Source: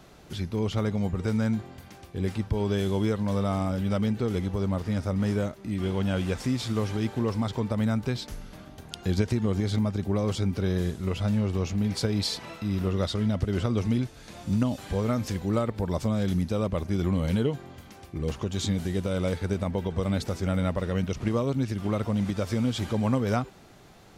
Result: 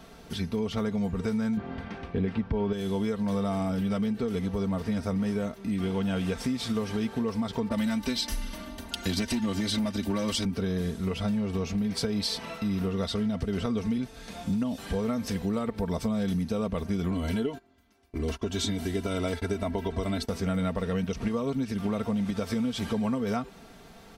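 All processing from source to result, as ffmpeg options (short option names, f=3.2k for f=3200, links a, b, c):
-filter_complex "[0:a]asettb=1/sr,asplit=3[a][b][c];[a]atrim=end=1.574[d];[b]atrim=start=1.57:end=2.73,asetpts=PTS-STARTPTS,afade=t=in:d=0.004:c=qsin,afade=t=out:st=1.156:d=0.004:c=qsin,lowpass=2.5k,acontrast=90[e];[c]atrim=start=2.726[f];[d][e]acrossfade=d=0.004:c1=hsin:c2=qsin[g];[g][f]acrossfade=d=0.004:c1=qsin:c2=hsin,asettb=1/sr,asplit=3[h][i][j];[h]atrim=end=7.694[k];[i]atrim=start=7.69:end=10.45,asetpts=PTS-STARTPTS,afade=t=in:d=0.004:c=qsin,afade=t=out:st=2.756:d=0.004:c=qsin,aecho=1:1:3.4:0.83,atrim=end_sample=121716,volume=21dB,asoftclip=hard,volume=-21dB,adynamicequalizer=threshold=0.00398:dfrequency=1700:dqfactor=0.7:tfrequency=1700:tqfactor=0.7:attack=5:release=100:ratio=0.375:range=4:mode=boostabove:tftype=highshelf[l];[j]atrim=start=10.446[m];[k][l]acrossfade=d=0.004:c1=hsin:c2=qsin[n];[n][m]acrossfade=d=0.004:c1=qsin:c2=hsin,asettb=1/sr,asplit=3[o][p][q];[o]atrim=end=17.114[r];[p]atrim=start=17.11:end=20.29,asetpts=PTS-STARTPTS,afade=t=in:d=0.004:c=qsin,afade=t=out:st=3.176:d=0.004:c=qsin,agate=range=-21dB:threshold=-38dB:ratio=16:release=100:detection=peak,aecho=1:1:3:0.64,atrim=end_sample=140238[s];[q]atrim=start=20.286[t];[r][s]acrossfade=d=0.004:c1=hsin:c2=qsin[u];[u][t]acrossfade=d=0.004:c1=qsin:c2=hsin,bandreject=f=6.9k:w=10,aecho=1:1:4.4:0.58,acompressor=threshold=-27dB:ratio=6,volume=1.5dB"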